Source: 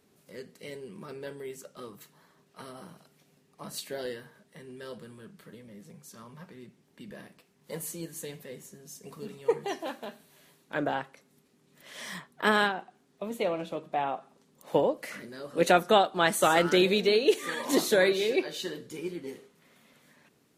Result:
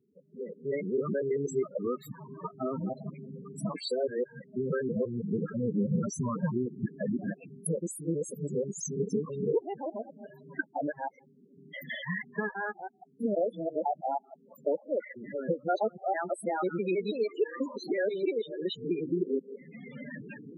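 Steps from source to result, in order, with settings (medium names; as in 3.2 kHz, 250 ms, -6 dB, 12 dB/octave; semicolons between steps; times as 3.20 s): time reversed locally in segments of 163 ms; recorder AGC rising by 26 dB/s; loudest bins only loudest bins 8; trim -6 dB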